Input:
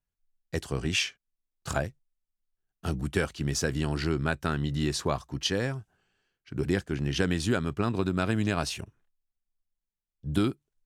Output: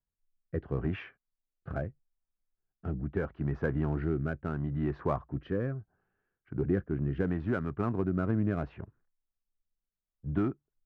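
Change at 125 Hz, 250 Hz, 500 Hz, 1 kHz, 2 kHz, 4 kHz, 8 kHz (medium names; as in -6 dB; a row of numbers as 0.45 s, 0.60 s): -2.0 dB, -2.5 dB, -2.5 dB, -5.5 dB, -9.5 dB, under -25 dB, under -35 dB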